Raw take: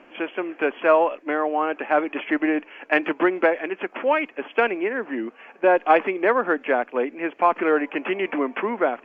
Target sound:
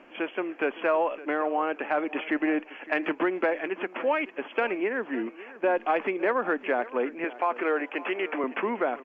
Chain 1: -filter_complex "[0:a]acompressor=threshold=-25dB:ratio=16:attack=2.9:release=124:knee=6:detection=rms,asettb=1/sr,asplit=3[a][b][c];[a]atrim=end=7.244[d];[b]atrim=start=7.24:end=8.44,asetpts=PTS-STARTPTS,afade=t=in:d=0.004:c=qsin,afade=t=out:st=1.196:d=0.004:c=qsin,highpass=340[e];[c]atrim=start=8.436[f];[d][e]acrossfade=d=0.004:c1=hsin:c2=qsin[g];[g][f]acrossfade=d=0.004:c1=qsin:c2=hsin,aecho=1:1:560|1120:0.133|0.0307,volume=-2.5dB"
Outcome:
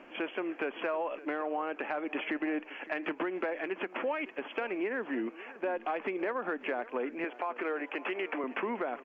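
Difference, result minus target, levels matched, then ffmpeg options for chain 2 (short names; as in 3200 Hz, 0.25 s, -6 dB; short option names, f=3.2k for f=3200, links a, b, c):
compressor: peak gain reduction +9.5 dB
-filter_complex "[0:a]acompressor=threshold=-15dB:ratio=16:attack=2.9:release=124:knee=6:detection=rms,asettb=1/sr,asplit=3[a][b][c];[a]atrim=end=7.244[d];[b]atrim=start=7.24:end=8.44,asetpts=PTS-STARTPTS,afade=t=in:d=0.004:c=qsin,afade=t=out:st=1.196:d=0.004:c=qsin,highpass=340[e];[c]atrim=start=8.436[f];[d][e]acrossfade=d=0.004:c1=hsin:c2=qsin[g];[g][f]acrossfade=d=0.004:c1=qsin:c2=hsin,aecho=1:1:560|1120:0.133|0.0307,volume=-2.5dB"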